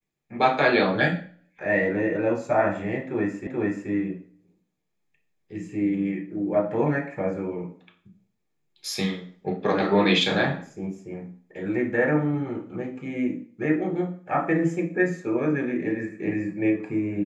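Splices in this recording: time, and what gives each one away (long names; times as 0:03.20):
0:03.47: the same again, the last 0.43 s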